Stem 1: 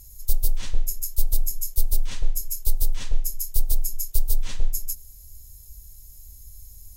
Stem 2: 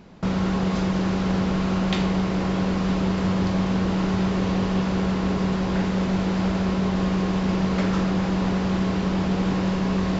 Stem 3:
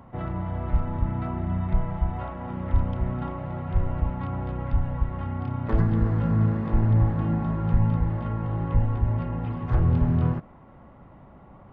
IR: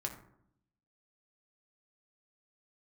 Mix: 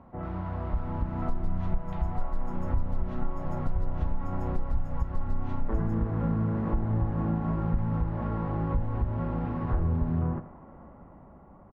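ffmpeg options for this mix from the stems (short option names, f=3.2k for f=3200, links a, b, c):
-filter_complex "[0:a]adelay=1000,volume=-2dB[a];[1:a]highpass=f=840:w=0.5412,highpass=f=840:w=1.3066,volume=-11dB[b];[2:a]dynaudnorm=f=260:g=9:m=6dB,volume=-3dB,asplit=2[c][d];[d]volume=-16dB,aecho=0:1:84:1[e];[a][b][c][e]amix=inputs=4:normalize=0,lowpass=1.4k,equalizer=f=120:t=o:w=0.26:g=-12,acompressor=threshold=-25dB:ratio=3"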